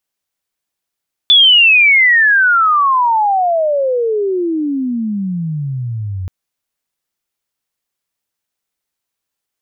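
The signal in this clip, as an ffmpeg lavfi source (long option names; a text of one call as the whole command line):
ffmpeg -f lavfi -i "aevalsrc='pow(10,(-4-15*t/4.98)/20)*sin(2*PI*3500*4.98/log(89/3500)*(exp(log(89/3500)*t/4.98)-1))':duration=4.98:sample_rate=44100" out.wav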